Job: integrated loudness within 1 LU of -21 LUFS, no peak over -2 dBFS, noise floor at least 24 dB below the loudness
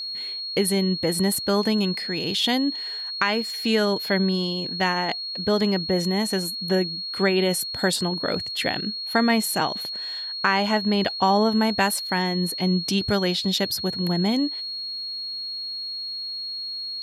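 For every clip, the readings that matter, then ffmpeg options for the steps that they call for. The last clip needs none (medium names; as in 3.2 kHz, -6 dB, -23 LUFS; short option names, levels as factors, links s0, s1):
steady tone 4.3 kHz; tone level -29 dBFS; loudness -23.5 LUFS; peak level -6.5 dBFS; loudness target -21.0 LUFS
-> -af "bandreject=f=4300:w=30"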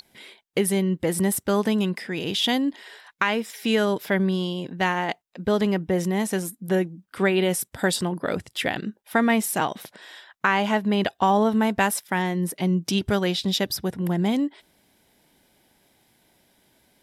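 steady tone not found; loudness -24.0 LUFS; peak level -6.5 dBFS; loudness target -21.0 LUFS
-> -af "volume=1.41"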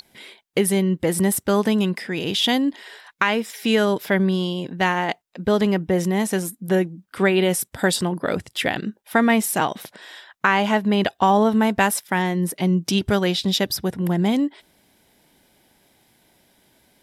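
loudness -21.0 LUFS; peak level -3.5 dBFS; noise floor -67 dBFS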